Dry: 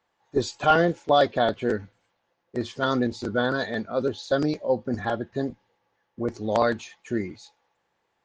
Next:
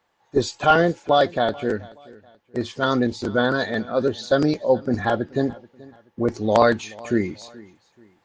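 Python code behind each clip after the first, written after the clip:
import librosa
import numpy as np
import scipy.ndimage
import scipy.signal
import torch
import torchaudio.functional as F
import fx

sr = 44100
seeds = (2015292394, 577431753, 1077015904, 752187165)

y = fx.rider(x, sr, range_db=4, speed_s=2.0)
y = fx.echo_feedback(y, sr, ms=430, feedback_pct=35, wet_db=-22)
y = y * librosa.db_to_amplitude(3.5)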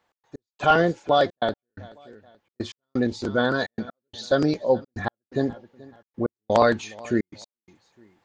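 y = fx.step_gate(x, sr, bpm=127, pattern='x.x..xxxxx', floor_db=-60.0, edge_ms=4.5)
y = y * librosa.db_to_amplitude(-2.0)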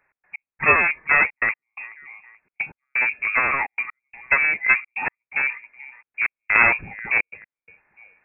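y = np.minimum(x, 2.0 * 10.0 ** (-19.0 / 20.0) - x)
y = fx.freq_invert(y, sr, carrier_hz=2600)
y = y * librosa.db_to_amplitude(4.0)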